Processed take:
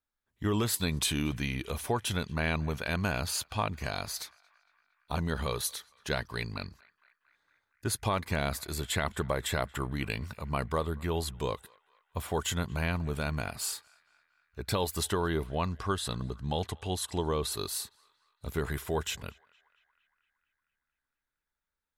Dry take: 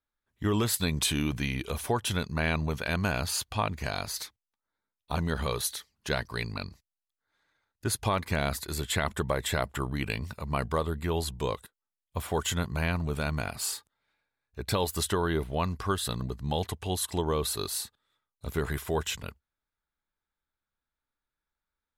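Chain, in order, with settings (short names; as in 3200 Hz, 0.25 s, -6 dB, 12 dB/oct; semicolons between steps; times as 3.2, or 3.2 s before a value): 15.46–17.52 LPF 10000 Hz 12 dB/oct; narrowing echo 0.23 s, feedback 71%, band-pass 1700 Hz, level -24 dB; gain -2 dB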